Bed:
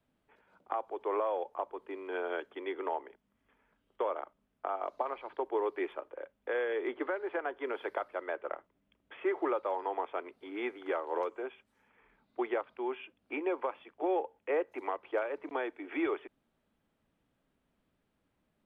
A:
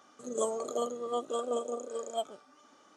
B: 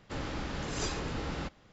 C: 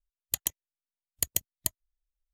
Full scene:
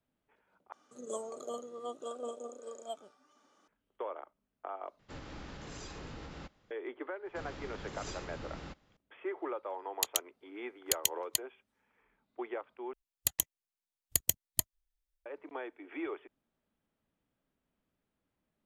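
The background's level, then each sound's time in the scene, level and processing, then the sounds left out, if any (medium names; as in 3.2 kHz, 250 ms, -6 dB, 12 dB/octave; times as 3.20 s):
bed -6.5 dB
0.72 s: replace with A -8 dB
4.99 s: replace with B -9 dB + peak limiter -27.5 dBFS
7.25 s: add B -9 dB
9.69 s: add C -7 dB + frequency weighting D
12.93 s: replace with C -1 dB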